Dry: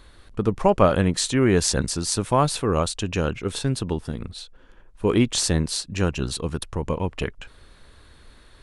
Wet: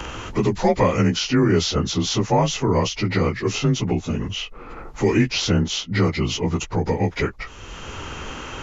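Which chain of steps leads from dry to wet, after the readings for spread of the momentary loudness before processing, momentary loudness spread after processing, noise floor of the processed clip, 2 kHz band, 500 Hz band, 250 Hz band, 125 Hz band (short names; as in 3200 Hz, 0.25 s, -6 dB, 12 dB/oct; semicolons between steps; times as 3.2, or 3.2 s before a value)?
11 LU, 15 LU, -39 dBFS, +4.5 dB, +1.5 dB, +3.0 dB, +3.5 dB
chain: inharmonic rescaling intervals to 89%; three-band squash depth 70%; gain +4.5 dB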